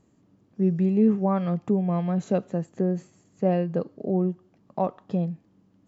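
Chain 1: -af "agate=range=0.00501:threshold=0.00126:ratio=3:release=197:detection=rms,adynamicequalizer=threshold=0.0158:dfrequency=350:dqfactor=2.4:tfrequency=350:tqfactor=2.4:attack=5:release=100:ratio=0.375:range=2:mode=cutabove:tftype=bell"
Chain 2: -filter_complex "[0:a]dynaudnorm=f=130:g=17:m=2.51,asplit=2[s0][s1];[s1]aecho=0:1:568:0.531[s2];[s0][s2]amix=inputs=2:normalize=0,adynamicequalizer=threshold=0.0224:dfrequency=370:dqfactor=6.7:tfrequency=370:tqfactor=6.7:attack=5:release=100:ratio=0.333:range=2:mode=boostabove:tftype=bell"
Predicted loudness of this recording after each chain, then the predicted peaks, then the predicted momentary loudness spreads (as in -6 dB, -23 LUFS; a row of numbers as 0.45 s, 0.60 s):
-26.0 LUFS, -18.5 LUFS; -11.5 dBFS, -2.0 dBFS; 11 LU, 9 LU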